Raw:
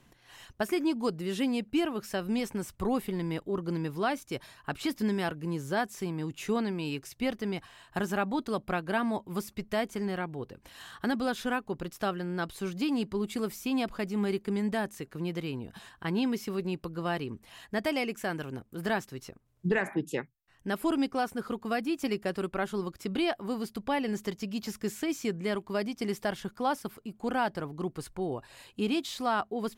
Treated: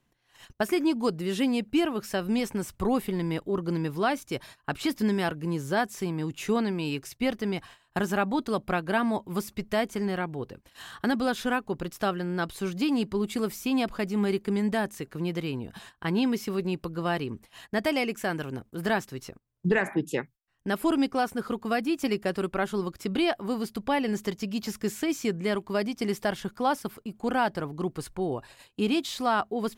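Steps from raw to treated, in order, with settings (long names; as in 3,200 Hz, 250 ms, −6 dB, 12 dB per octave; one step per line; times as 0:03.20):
noise gate −50 dBFS, range −15 dB
level +3.5 dB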